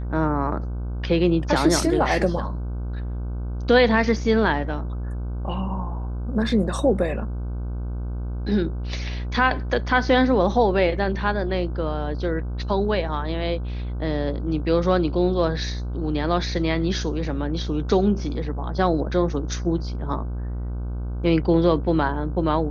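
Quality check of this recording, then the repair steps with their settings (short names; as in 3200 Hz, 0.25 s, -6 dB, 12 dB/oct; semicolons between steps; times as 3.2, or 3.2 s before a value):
buzz 60 Hz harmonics 26 -28 dBFS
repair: de-hum 60 Hz, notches 26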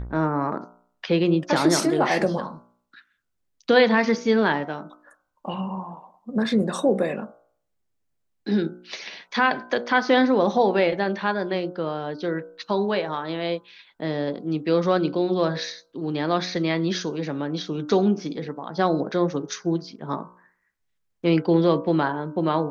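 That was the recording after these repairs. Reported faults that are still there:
none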